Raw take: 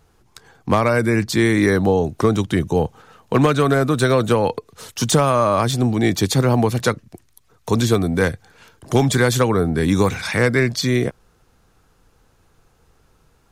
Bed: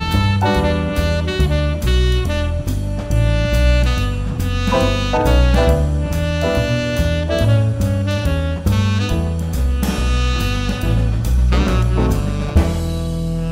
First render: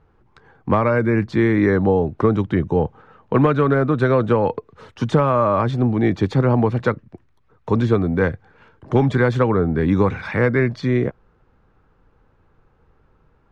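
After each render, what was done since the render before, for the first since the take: LPF 1800 Hz 12 dB/oct; notch 700 Hz, Q 12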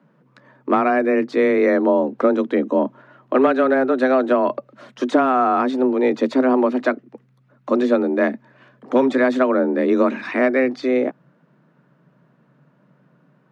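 frequency shift +130 Hz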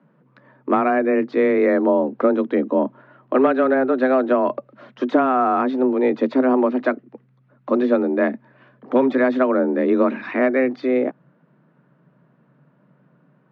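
air absorption 230 m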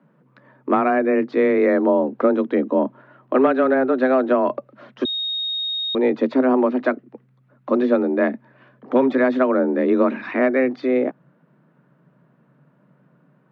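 5.05–5.95 bleep 3730 Hz -22 dBFS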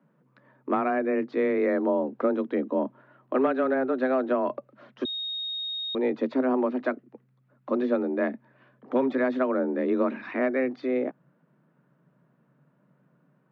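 gain -7.5 dB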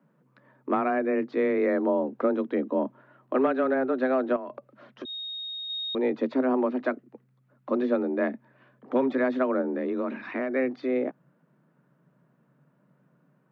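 4.36–5.7 compressor, threshold -34 dBFS; 9.61–10.54 compressor, threshold -25 dBFS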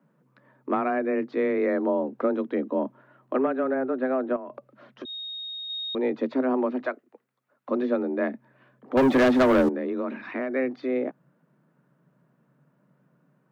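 3.37–4.52 air absorption 380 m; 6.86–7.69 HPF 460 Hz; 8.97–9.69 sample leveller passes 3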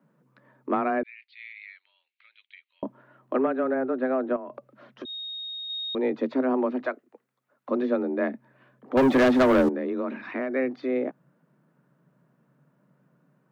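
1.03–2.83 Chebyshev band-pass 2200–4400 Hz, order 3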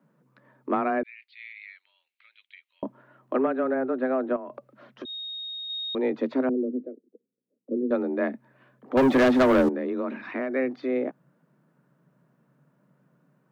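6.49–7.91 elliptic band-pass 160–480 Hz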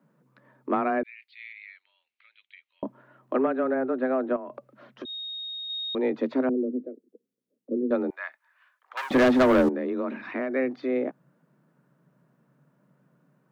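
1.53–2.86 air absorption 91 m; 8.1–9.11 HPF 1100 Hz 24 dB/oct

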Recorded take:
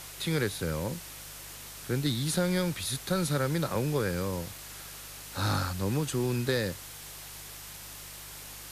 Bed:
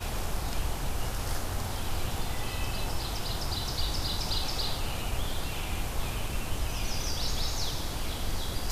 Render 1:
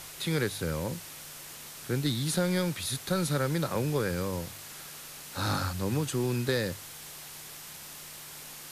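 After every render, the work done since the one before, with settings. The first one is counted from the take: de-hum 50 Hz, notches 2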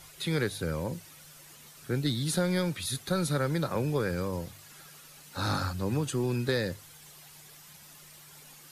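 denoiser 10 dB, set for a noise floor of -45 dBFS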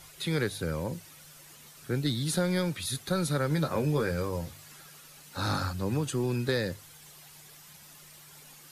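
3.49–4.76 doubler 13 ms -6 dB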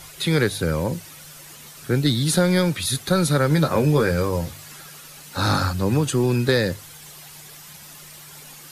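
gain +9.5 dB

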